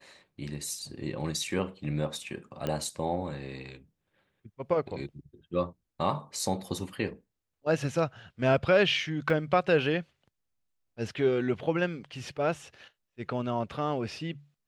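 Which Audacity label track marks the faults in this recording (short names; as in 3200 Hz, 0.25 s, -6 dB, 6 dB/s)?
2.670000	2.670000	pop -18 dBFS
9.300000	9.300000	gap 2.2 ms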